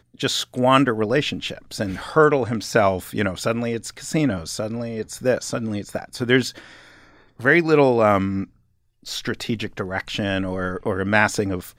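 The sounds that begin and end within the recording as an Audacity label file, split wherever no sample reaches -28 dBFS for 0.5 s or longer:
7.400000	8.440000	sound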